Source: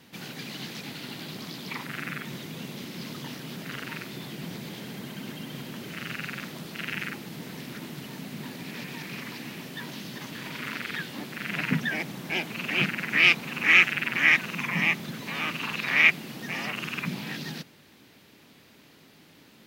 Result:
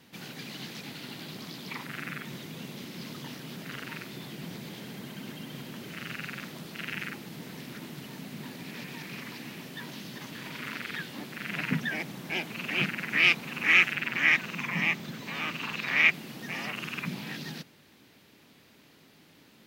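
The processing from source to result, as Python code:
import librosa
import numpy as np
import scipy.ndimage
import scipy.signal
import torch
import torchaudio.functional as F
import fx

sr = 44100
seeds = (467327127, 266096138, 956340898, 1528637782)

y = fx.peak_eq(x, sr, hz=11000.0, db=-11.0, octaves=0.26, at=(13.95, 16.14))
y = y * librosa.db_to_amplitude(-3.0)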